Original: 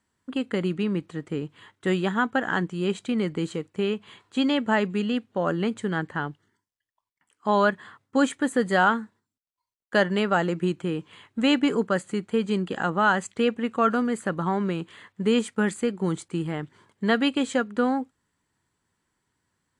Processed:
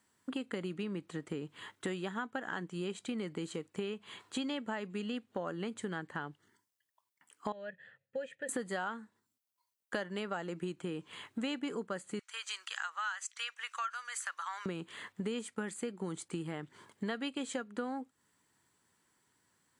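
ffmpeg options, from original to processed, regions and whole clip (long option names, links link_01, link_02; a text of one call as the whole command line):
ffmpeg -i in.wav -filter_complex "[0:a]asettb=1/sr,asplit=3[link_01][link_02][link_03];[link_01]atrim=end=7.524[link_04];[link_02]atrim=start=7.52:end=8.49,asetpts=PTS-STARTPTS,afade=type=in:duration=0.004:curve=qsin,afade=type=out:start_time=0.966:duration=0.004:curve=qsin,asplit=3[link_05][link_06][link_07];[link_05]bandpass=frequency=530:width_type=q:width=8,volume=0dB[link_08];[link_06]bandpass=frequency=1840:width_type=q:width=8,volume=-6dB[link_09];[link_07]bandpass=frequency=2480:width_type=q:width=8,volume=-9dB[link_10];[link_08][link_09][link_10]amix=inputs=3:normalize=0,lowshelf=frequency=210:width_type=q:width=3:gain=13[link_11];[link_03]atrim=start=8.486[link_12];[link_04][link_11]acrossfade=duration=0.004:curve1=hsin:curve2=qsin[link_13];[link_13][link_12]acrossfade=duration=0.004:curve1=qsin:curve2=hsin,asettb=1/sr,asplit=3[link_14][link_15][link_16];[link_14]atrim=end=12.194[link_17];[link_15]atrim=start=12.19:end=14.66,asetpts=PTS-STARTPTS,afade=type=in:duration=0.004:curve=qsin,afade=type=out:start_time=2.466:duration=0.004:curve=qsin,highpass=frequency=1200:width=0.5412,highpass=frequency=1200:width=1.3066,equalizer=frequency=5800:width_type=o:width=0.36:gain=10.5[link_18];[link_16]atrim=start=14.656[link_19];[link_17][link_18]acrossfade=duration=0.004:curve1=hsin:curve2=qsin[link_20];[link_20][link_19]acrossfade=duration=0.004:curve1=qsin:curve2=hsin,highpass=frequency=180:poles=1,highshelf=frequency=7600:gain=7.5,acompressor=threshold=-38dB:ratio=5,volume=1.5dB" out.wav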